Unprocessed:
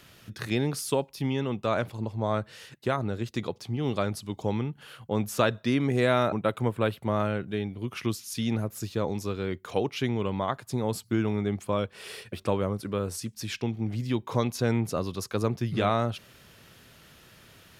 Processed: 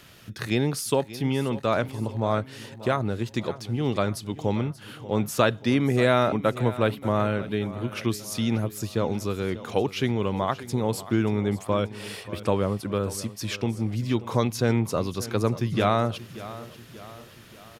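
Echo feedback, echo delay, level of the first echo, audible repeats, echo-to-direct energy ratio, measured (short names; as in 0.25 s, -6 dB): 51%, 0.583 s, -16.0 dB, 4, -14.5 dB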